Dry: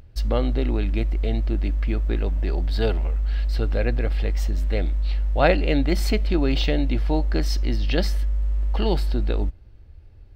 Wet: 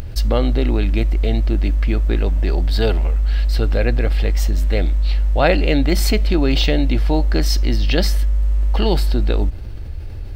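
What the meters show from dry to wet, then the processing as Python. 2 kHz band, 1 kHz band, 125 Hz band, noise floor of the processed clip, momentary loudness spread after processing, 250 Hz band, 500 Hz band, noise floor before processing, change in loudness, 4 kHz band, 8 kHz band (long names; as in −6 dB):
+5.0 dB, +4.0 dB, +5.5 dB, −28 dBFS, 3 LU, +5.0 dB, +4.5 dB, −46 dBFS, +5.5 dB, +7.5 dB, can't be measured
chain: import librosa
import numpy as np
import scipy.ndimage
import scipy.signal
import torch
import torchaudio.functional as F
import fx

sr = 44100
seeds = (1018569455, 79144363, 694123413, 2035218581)

y = fx.high_shelf(x, sr, hz=5200.0, db=6.5)
y = fx.env_flatten(y, sr, amount_pct=50)
y = y * librosa.db_to_amplitude(2.0)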